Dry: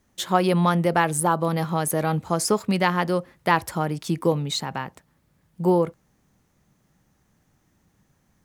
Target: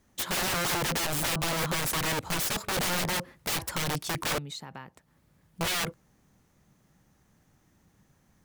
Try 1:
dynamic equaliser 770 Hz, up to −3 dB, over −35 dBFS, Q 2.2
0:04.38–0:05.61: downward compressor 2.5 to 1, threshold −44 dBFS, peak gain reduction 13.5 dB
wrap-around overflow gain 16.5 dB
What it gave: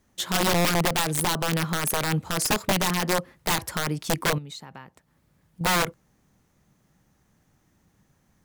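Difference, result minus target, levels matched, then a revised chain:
wrap-around overflow: distortion −15 dB
dynamic equaliser 770 Hz, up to −3 dB, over −35 dBFS, Q 2.2
0:04.38–0:05.61: downward compressor 2.5 to 1, threshold −44 dBFS, peak gain reduction 13.5 dB
wrap-around overflow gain 24 dB

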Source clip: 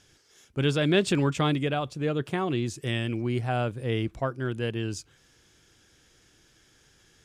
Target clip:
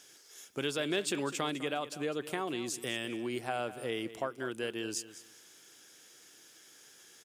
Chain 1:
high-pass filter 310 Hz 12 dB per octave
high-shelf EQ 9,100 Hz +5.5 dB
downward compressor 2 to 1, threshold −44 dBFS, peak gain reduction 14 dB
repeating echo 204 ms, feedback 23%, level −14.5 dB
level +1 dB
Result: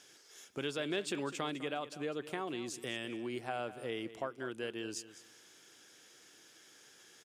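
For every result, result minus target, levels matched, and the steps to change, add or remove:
downward compressor: peak gain reduction +3.5 dB; 8,000 Hz band −3.0 dB
change: downward compressor 2 to 1, threshold −37 dBFS, peak gain reduction 10.5 dB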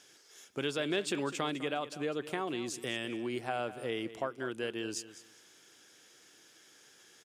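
8,000 Hz band −3.0 dB
change: high-shelf EQ 9,100 Hz +17 dB

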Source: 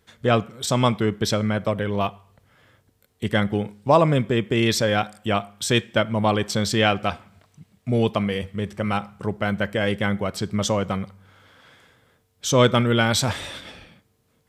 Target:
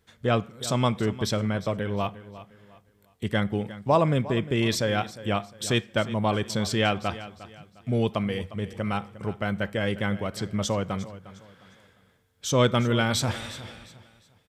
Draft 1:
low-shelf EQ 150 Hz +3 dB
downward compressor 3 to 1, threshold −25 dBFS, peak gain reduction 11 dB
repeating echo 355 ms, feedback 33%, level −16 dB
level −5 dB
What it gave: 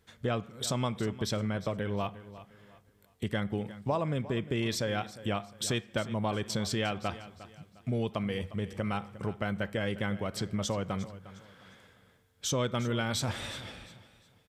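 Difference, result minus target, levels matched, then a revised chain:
downward compressor: peak gain reduction +11 dB
low-shelf EQ 150 Hz +3 dB
repeating echo 355 ms, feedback 33%, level −16 dB
level −5 dB

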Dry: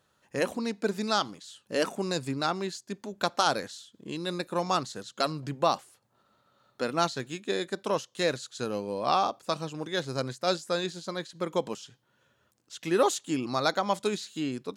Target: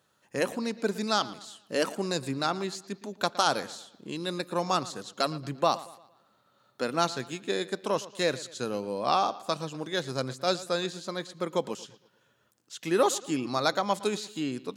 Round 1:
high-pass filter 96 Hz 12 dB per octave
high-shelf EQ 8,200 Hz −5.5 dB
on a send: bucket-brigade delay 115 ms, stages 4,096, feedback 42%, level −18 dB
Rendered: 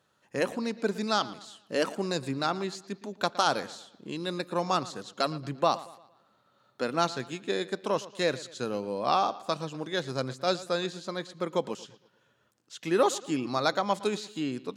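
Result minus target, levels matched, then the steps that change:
8,000 Hz band −3.0 dB
change: high-shelf EQ 8,200 Hz +3.5 dB

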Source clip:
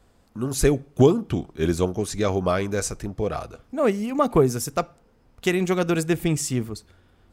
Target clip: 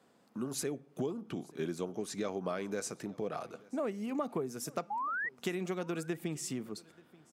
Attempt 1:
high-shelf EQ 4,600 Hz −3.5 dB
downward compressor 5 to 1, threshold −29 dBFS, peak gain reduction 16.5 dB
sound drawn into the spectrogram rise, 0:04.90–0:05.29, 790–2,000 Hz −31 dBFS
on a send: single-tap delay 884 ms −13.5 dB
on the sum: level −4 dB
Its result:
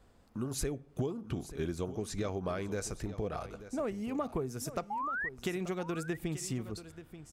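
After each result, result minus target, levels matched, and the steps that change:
echo-to-direct +10 dB; 125 Hz band +5.0 dB
change: single-tap delay 884 ms −23.5 dB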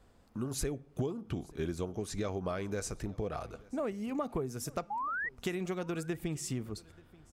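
125 Hz band +5.0 dB
add after downward compressor: high-pass filter 160 Hz 24 dB per octave

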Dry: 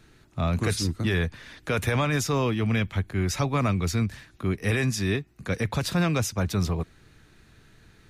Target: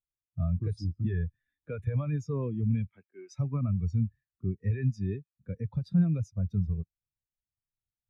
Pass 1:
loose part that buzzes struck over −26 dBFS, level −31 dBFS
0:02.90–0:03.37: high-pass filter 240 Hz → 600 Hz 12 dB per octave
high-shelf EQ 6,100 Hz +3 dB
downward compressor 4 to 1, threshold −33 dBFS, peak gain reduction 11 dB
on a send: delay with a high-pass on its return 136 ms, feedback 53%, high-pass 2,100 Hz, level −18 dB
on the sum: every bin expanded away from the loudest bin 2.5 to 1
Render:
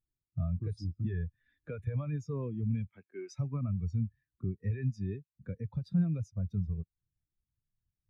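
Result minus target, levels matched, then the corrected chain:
downward compressor: peak gain reduction +6.5 dB
loose part that buzzes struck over −26 dBFS, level −31 dBFS
0:02.90–0:03.37: high-pass filter 240 Hz → 600 Hz 12 dB per octave
high-shelf EQ 6,100 Hz +3 dB
downward compressor 4 to 1, threshold −24.5 dBFS, peak gain reduction 5 dB
on a send: delay with a high-pass on its return 136 ms, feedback 53%, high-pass 2,100 Hz, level −18 dB
on the sum: every bin expanded away from the loudest bin 2.5 to 1

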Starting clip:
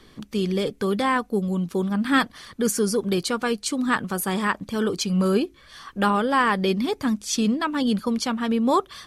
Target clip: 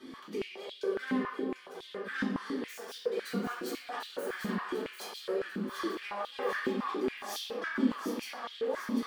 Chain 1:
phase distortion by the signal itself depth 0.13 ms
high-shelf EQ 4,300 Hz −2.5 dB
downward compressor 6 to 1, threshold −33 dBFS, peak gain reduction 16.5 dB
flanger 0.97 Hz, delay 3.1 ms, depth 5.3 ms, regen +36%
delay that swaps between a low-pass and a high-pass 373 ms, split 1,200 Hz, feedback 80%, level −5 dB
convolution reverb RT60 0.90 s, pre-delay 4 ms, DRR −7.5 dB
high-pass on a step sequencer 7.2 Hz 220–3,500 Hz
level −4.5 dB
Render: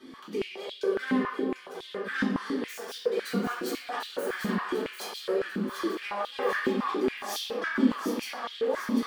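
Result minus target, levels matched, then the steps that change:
downward compressor: peak gain reduction −5 dB
change: downward compressor 6 to 1, threshold −39 dBFS, peak gain reduction 21.5 dB

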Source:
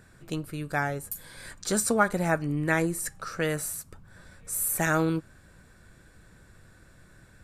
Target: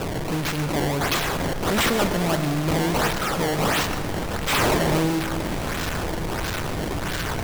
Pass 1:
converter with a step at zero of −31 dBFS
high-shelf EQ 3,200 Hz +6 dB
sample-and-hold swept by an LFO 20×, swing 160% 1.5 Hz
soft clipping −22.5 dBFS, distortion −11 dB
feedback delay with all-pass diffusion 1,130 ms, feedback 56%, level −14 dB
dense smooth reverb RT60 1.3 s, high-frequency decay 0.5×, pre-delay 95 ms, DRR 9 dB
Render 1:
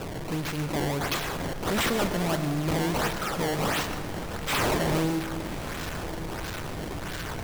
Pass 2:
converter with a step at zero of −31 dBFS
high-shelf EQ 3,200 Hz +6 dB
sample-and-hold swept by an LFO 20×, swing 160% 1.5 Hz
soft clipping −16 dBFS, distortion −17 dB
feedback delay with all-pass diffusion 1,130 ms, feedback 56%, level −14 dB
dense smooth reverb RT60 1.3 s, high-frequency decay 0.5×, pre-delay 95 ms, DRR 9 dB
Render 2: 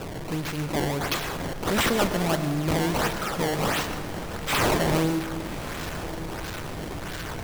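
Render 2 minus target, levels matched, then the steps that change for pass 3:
converter with a step at zero: distortion −6 dB
change: converter with a step at zero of −23 dBFS

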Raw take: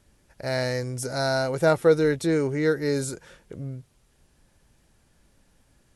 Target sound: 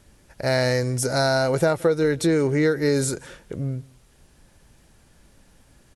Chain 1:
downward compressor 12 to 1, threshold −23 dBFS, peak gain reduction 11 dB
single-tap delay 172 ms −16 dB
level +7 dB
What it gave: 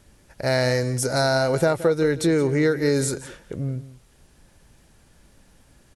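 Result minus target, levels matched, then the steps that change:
echo-to-direct +9 dB
change: single-tap delay 172 ms −25 dB

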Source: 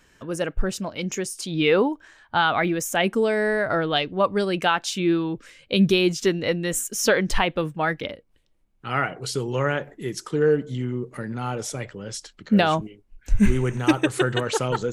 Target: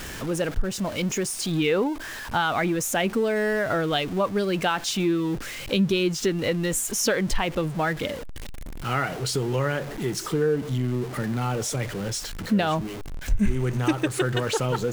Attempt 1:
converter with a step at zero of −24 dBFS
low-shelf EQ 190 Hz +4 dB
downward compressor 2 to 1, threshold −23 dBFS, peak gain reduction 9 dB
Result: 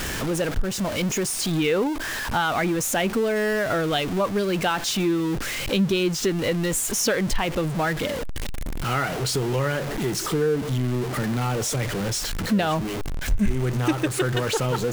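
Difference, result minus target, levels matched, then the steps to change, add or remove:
converter with a step at zero: distortion +6 dB
change: converter with a step at zero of −31.5 dBFS

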